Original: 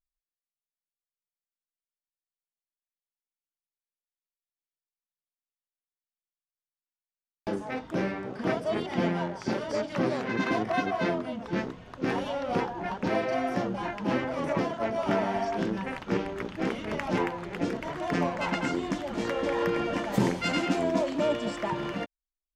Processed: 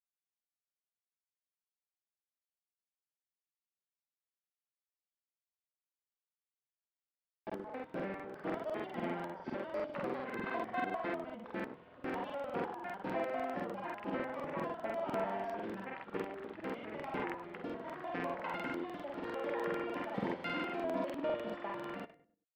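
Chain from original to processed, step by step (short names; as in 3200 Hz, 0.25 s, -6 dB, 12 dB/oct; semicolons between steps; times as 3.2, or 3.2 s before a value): HPF 530 Hz 6 dB/oct; air absorption 430 m; on a send at -13.5 dB: reverb RT60 0.50 s, pre-delay 4 ms; on the sum: crackling interface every 0.10 s, samples 2048, repeat; gain -5 dB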